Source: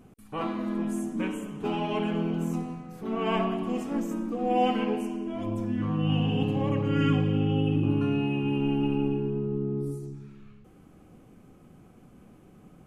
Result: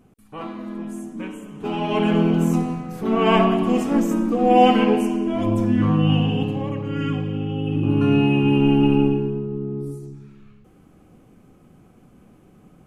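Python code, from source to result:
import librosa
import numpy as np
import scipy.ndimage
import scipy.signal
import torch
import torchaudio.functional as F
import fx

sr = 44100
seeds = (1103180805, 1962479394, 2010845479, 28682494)

y = fx.gain(x, sr, db=fx.line((1.43, -1.5), (2.12, 10.5), (5.89, 10.5), (6.75, -0.5), (7.58, -0.5), (8.14, 10.0), (9.0, 10.0), (9.47, 2.0)))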